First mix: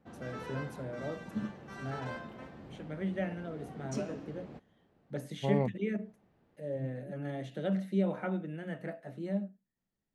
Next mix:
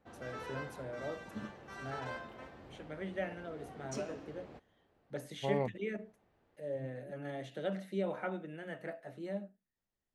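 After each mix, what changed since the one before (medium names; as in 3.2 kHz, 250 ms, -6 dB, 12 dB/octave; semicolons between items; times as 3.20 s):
master: add peaking EQ 180 Hz -9.5 dB 1.4 oct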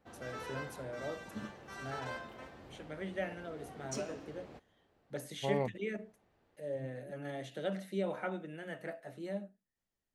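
master: add treble shelf 4.6 kHz +7 dB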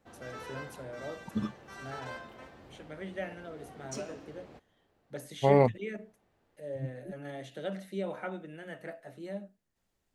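second voice +11.5 dB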